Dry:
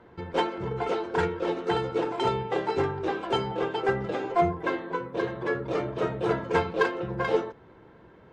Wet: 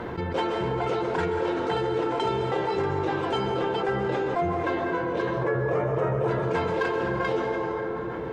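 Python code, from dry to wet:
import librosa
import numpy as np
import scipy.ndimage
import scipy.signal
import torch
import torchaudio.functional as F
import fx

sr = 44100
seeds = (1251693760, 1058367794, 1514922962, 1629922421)

y = fx.graphic_eq(x, sr, hz=(125, 250, 500, 1000, 2000, 4000), db=(11, -5, 7, 5, 3, -12), at=(5.37, 6.28))
y = fx.rev_plate(y, sr, seeds[0], rt60_s=2.2, hf_ratio=0.5, predelay_ms=115, drr_db=6.0)
y = fx.env_flatten(y, sr, amount_pct=70)
y = F.gain(torch.from_numpy(y), -5.5).numpy()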